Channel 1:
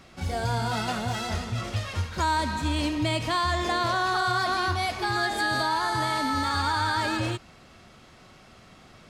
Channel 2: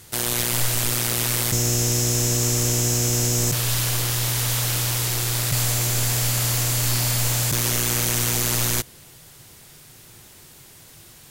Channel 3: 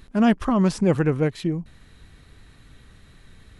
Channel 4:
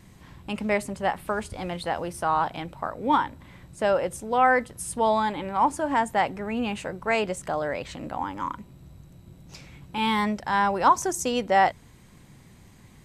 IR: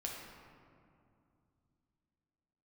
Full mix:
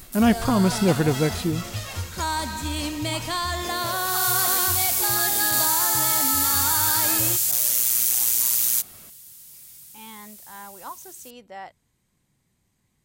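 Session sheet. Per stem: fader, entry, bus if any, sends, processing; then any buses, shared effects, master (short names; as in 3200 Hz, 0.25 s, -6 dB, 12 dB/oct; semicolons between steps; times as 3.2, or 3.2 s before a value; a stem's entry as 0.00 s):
-2.5 dB, 0.00 s, no send, high shelf 11000 Hz +9 dB
-16.0 dB, 0.00 s, no send, tilt +3.5 dB/oct; auto duck -23 dB, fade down 0.30 s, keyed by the third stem
-0.5 dB, 0.00 s, no send, dry
-19.5 dB, 0.00 s, no send, dry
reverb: off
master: high shelf 4800 Hz +9 dB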